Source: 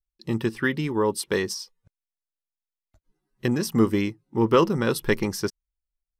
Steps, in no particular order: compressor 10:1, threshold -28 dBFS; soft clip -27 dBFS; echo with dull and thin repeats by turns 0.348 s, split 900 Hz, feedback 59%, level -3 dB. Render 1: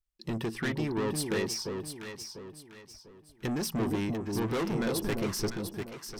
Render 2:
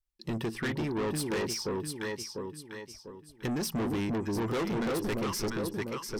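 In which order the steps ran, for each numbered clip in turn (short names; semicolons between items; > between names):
soft clip > compressor > echo with dull and thin repeats by turns; echo with dull and thin repeats by turns > soft clip > compressor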